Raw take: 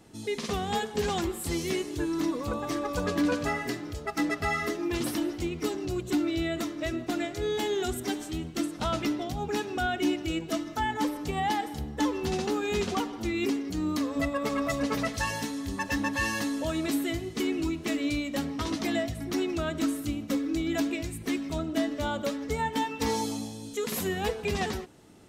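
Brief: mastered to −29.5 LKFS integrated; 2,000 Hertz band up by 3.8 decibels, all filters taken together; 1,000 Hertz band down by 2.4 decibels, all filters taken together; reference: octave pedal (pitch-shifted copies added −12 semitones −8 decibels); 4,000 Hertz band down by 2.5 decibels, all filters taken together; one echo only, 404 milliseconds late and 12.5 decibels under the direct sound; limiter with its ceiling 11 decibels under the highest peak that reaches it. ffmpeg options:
ffmpeg -i in.wav -filter_complex "[0:a]equalizer=frequency=1000:width_type=o:gain=-4.5,equalizer=frequency=2000:width_type=o:gain=7,equalizer=frequency=4000:width_type=o:gain=-6,alimiter=level_in=3dB:limit=-24dB:level=0:latency=1,volume=-3dB,aecho=1:1:404:0.237,asplit=2[link_01][link_02];[link_02]asetrate=22050,aresample=44100,atempo=2,volume=-8dB[link_03];[link_01][link_03]amix=inputs=2:normalize=0,volume=5dB" out.wav

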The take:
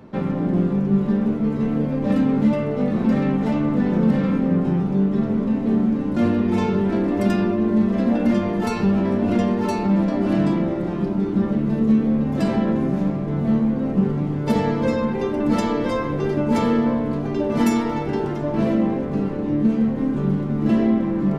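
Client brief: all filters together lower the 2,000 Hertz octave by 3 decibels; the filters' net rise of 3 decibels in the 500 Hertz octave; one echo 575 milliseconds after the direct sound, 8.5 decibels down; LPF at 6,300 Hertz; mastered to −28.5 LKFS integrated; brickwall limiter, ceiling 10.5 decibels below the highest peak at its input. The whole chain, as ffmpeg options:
ffmpeg -i in.wav -af "lowpass=6300,equalizer=frequency=500:width_type=o:gain=4,equalizer=frequency=2000:width_type=o:gain=-4,alimiter=limit=-17dB:level=0:latency=1,aecho=1:1:575:0.376,volume=-4.5dB" out.wav

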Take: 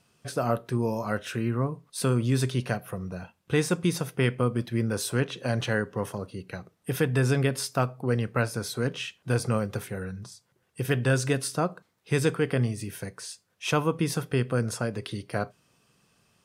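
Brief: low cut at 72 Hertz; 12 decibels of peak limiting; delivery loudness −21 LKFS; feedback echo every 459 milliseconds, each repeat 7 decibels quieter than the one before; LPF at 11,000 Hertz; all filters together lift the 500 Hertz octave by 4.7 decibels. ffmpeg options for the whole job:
ffmpeg -i in.wav -af "highpass=72,lowpass=11000,equalizer=frequency=500:width_type=o:gain=5.5,alimiter=limit=-19.5dB:level=0:latency=1,aecho=1:1:459|918|1377|1836|2295:0.447|0.201|0.0905|0.0407|0.0183,volume=9.5dB" out.wav

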